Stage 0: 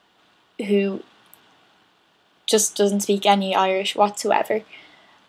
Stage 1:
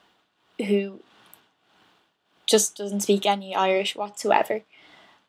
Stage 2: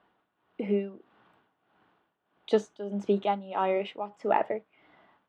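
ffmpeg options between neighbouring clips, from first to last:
-af "tremolo=f=1.6:d=0.81"
-af "lowpass=1.7k,volume=-5dB"

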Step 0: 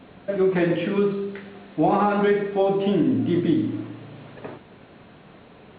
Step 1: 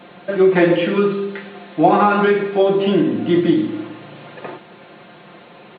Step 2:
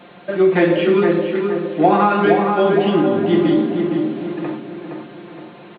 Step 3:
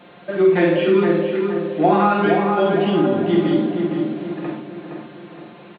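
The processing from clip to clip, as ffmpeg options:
-af "highpass=f=370:p=1,aecho=1:1:5.7:0.57,volume=7.5dB"
-filter_complex "[0:a]asplit=2[a][b];[b]adelay=466,lowpass=f=1.7k:p=1,volume=-3.5dB,asplit=2[c][d];[d]adelay=466,lowpass=f=1.7k:p=1,volume=0.49,asplit=2[e][f];[f]adelay=466,lowpass=f=1.7k:p=1,volume=0.49,asplit=2[g][h];[h]adelay=466,lowpass=f=1.7k:p=1,volume=0.49,asplit=2[i][j];[j]adelay=466,lowpass=f=1.7k:p=1,volume=0.49,asplit=2[k][l];[l]adelay=466,lowpass=f=1.7k:p=1,volume=0.49[m];[a][c][e][g][i][k][m]amix=inputs=7:normalize=0,volume=-1dB"
-filter_complex "[0:a]asplit=2[a][b];[b]adelay=50,volume=-5dB[c];[a][c]amix=inputs=2:normalize=0,volume=-3dB"

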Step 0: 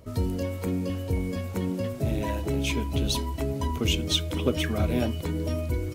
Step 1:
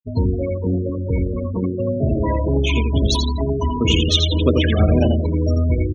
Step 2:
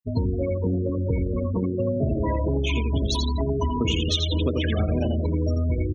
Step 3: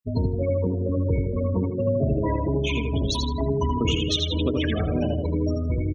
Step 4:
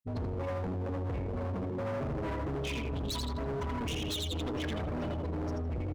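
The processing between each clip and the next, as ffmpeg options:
-af "aecho=1:1:85|170|255|340|425|510:0.631|0.278|0.122|0.0537|0.0236|0.0104,afftfilt=real='re*gte(hypot(re,im),0.0447)':imag='im*gte(hypot(re,im),0.0447)':win_size=1024:overlap=0.75,volume=7.5dB"
-af "acompressor=threshold=-20dB:ratio=6"
-filter_complex "[0:a]asplit=2[a][b];[b]adelay=78,lowpass=f=1.7k:p=1,volume=-5dB,asplit=2[c][d];[d]adelay=78,lowpass=f=1.7k:p=1,volume=0.27,asplit=2[e][f];[f]adelay=78,lowpass=f=1.7k:p=1,volume=0.27,asplit=2[g][h];[h]adelay=78,lowpass=f=1.7k:p=1,volume=0.27[i];[a][c][e][g][i]amix=inputs=5:normalize=0"
-af "volume=27.5dB,asoftclip=hard,volume=-27.5dB,volume=-5dB"

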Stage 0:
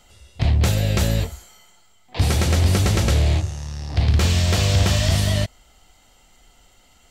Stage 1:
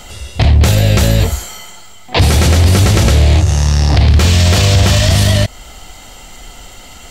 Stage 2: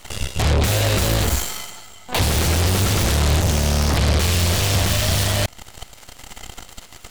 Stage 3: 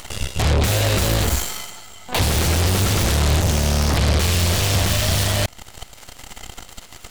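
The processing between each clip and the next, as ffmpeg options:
-filter_complex "[0:a]asplit=2[a][b];[b]acompressor=threshold=-26dB:ratio=6,volume=1dB[c];[a][c]amix=inputs=2:normalize=0,alimiter=level_in=14.5dB:limit=-1dB:release=50:level=0:latency=1,volume=-1dB"
-af "alimiter=limit=-13dB:level=0:latency=1:release=21,aeval=exprs='0.224*(cos(1*acos(clip(val(0)/0.224,-1,1)))-cos(1*PI/2))+0.0631*(cos(4*acos(clip(val(0)/0.224,-1,1)))-cos(4*PI/2))+0.1*(cos(6*acos(clip(val(0)/0.224,-1,1)))-cos(6*PI/2))+0.0316*(cos(7*acos(clip(val(0)/0.224,-1,1)))-cos(7*PI/2))+0.0178*(cos(8*acos(clip(val(0)/0.224,-1,1)))-cos(8*PI/2))':c=same"
-af "acompressor=mode=upward:threshold=-32dB:ratio=2.5"

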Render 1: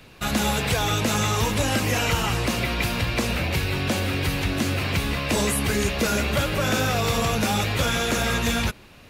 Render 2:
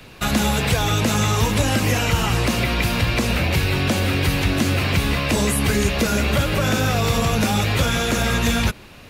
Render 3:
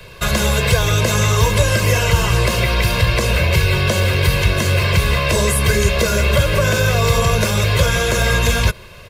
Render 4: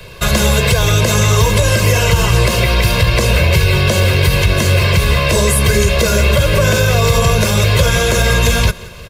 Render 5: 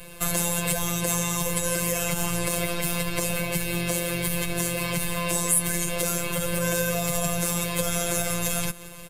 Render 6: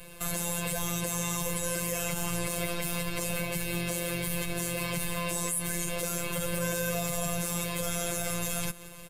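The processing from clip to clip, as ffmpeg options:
-filter_complex "[0:a]acrossover=split=260[a][b];[b]acompressor=threshold=-25dB:ratio=6[c];[a][c]amix=inputs=2:normalize=0,volume=5.5dB"
-af "aecho=1:1:1.9:0.85,volume=1.5dB"
-af "equalizer=f=1.5k:t=o:w=1.6:g=-2.5,aecho=1:1:177|354|531|708:0.0794|0.0437|0.024|0.0132,alimiter=level_in=5.5dB:limit=-1dB:release=50:level=0:latency=1,volume=-1dB"
-af "highshelf=f=6.7k:t=q:w=1.5:g=9.5,acompressor=threshold=-21dB:ratio=1.5,afftfilt=real='hypot(re,im)*cos(PI*b)':imag='0':win_size=1024:overlap=0.75,volume=-5dB"
-af "alimiter=limit=-8dB:level=0:latency=1:release=36,volume=-4.5dB"

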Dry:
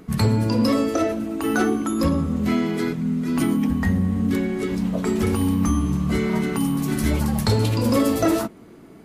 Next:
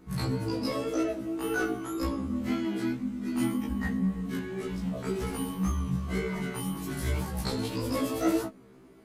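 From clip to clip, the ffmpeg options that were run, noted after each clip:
-af "flanger=delay=17.5:depth=7:speed=1.9,afftfilt=real='re*1.73*eq(mod(b,3),0)':imag='im*1.73*eq(mod(b,3),0)':win_size=2048:overlap=0.75,volume=-3dB"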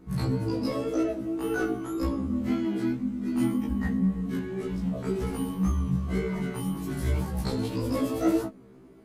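-af "tiltshelf=f=820:g=3.5"

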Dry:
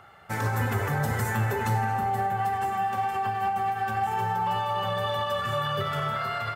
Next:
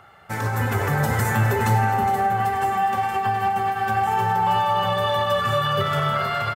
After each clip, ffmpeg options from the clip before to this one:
-filter_complex "[0:a]asplit=2[a][b];[b]aecho=0:1:414:0.299[c];[a][c]amix=inputs=2:normalize=0,dynaudnorm=f=480:g=3:m=4dB,volume=2dB"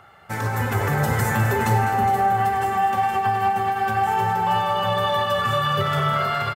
-af "aecho=1:1:203:0.299"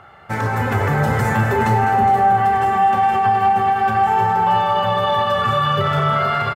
-filter_complex "[0:a]lowpass=f=2.8k:p=1,asplit=2[a][b];[b]alimiter=limit=-17.5dB:level=0:latency=1,volume=-0.5dB[c];[a][c]amix=inputs=2:normalize=0,asplit=2[d][e];[e]adelay=32,volume=-11dB[f];[d][f]amix=inputs=2:normalize=0"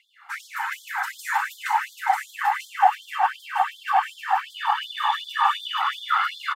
-af "aecho=1:1:940:0.631,afftfilt=real='hypot(re,im)*cos(2*PI*random(0))':imag='hypot(re,im)*sin(2*PI*random(1))':win_size=512:overlap=0.75,afftfilt=real='re*gte(b*sr/1024,720*pow(3200/720,0.5+0.5*sin(2*PI*2.7*pts/sr)))':imag='im*gte(b*sr/1024,720*pow(3200/720,0.5+0.5*sin(2*PI*2.7*pts/sr)))':win_size=1024:overlap=0.75,volume=3.5dB"

